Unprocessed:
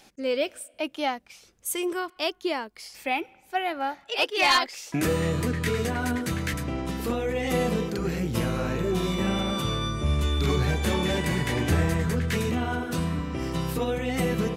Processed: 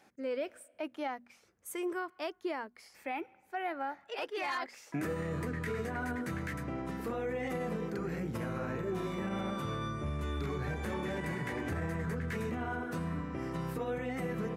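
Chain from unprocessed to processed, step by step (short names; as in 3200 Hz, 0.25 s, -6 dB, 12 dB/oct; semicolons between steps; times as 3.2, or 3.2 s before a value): HPF 81 Hz 12 dB/oct; resonant high shelf 2400 Hz -7.5 dB, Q 1.5; notches 60/120/180/240 Hz; limiter -20.5 dBFS, peak gain reduction 9 dB; gain -7 dB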